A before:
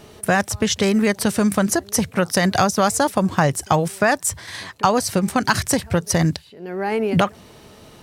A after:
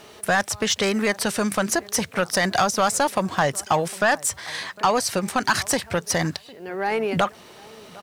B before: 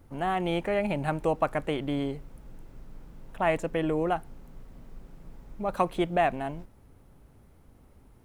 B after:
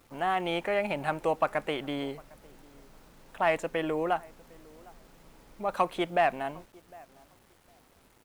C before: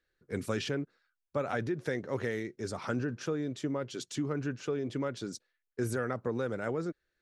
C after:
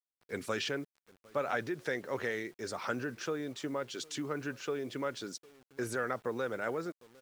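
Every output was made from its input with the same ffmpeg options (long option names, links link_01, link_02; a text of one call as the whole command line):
ffmpeg -i in.wav -filter_complex "[0:a]asplit=2[link_01][link_02];[link_02]adelay=755,lowpass=frequency=1100:poles=1,volume=-23.5dB,asplit=2[link_03][link_04];[link_04]adelay=755,lowpass=frequency=1100:poles=1,volume=0.2[link_05];[link_01][link_03][link_05]amix=inputs=3:normalize=0,asplit=2[link_06][link_07];[link_07]highpass=frequency=720:poles=1,volume=15dB,asoftclip=type=tanh:threshold=-1dB[link_08];[link_06][link_08]amix=inputs=2:normalize=0,lowpass=frequency=6500:poles=1,volume=-6dB,acrusher=bits=8:mix=0:aa=0.000001,volume=-7dB" out.wav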